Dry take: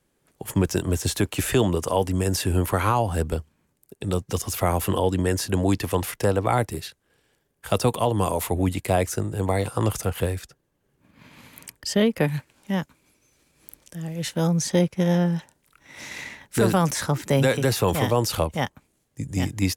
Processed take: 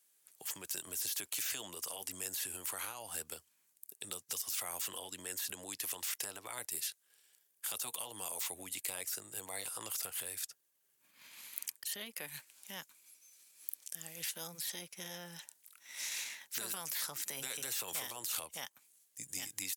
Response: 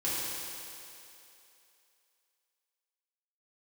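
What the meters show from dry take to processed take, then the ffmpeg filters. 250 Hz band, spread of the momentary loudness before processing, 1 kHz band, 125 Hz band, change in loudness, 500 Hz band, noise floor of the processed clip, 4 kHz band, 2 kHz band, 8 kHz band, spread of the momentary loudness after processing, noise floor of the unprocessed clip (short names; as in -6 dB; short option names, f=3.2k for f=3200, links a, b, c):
-32.0 dB, 13 LU, -22.5 dB, -36.5 dB, -15.5 dB, -28.0 dB, -75 dBFS, -9.5 dB, -13.5 dB, -5.5 dB, 12 LU, -71 dBFS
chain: -af "alimiter=limit=-19.5dB:level=0:latency=1:release=205,aderivative,afftfilt=real='re*lt(hypot(re,im),0.02)':imag='im*lt(hypot(re,im),0.02)':win_size=1024:overlap=0.75,volume=4.5dB"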